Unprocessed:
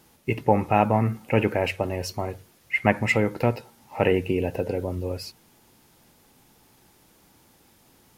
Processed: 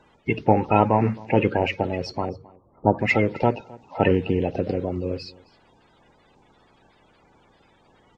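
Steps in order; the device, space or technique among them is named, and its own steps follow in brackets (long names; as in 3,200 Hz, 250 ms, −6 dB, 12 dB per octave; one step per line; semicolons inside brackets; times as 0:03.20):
0:02.29–0:02.99: Butterworth low-pass 1,200 Hz 72 dB per octave
clip after many re-uploads (low-pass filter 4,900 Hz 24 dB per octave; spectral magnitudes quantised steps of 30 dB)
single-tap delay 265 ms −23 dB
level +2.5 dB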